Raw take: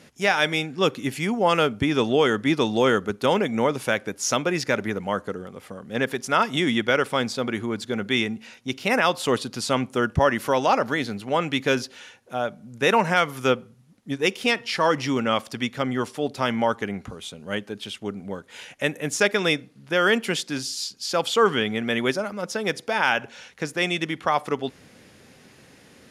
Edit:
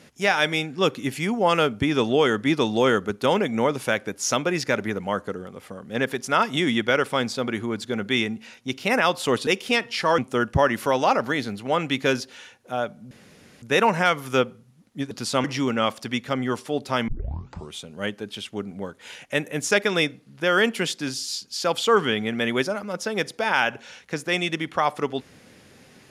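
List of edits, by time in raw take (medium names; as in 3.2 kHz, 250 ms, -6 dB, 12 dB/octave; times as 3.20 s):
9.47–9.80 s: swap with 14.22–14.93 s
12.73 s: insert room tone 0.51 s
16.57 s: tape start 0.66 s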